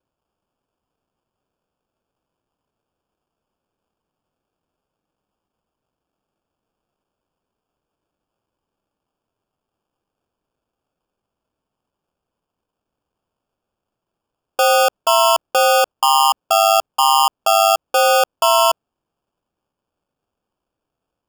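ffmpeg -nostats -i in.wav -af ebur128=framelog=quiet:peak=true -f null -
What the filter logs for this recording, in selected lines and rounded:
Integrated loudness:
  I:         -14.7 LUFS
  Threshold: -24.9 LUFS
Loudness range:
  LRA:         6.6 LU
  Threshold: -36.6 LUFS
  LRA low:   -21.1 LUFS
  LRA high:  -14.5 LUFS
True peak:
  Peak:       -5.1 dBFS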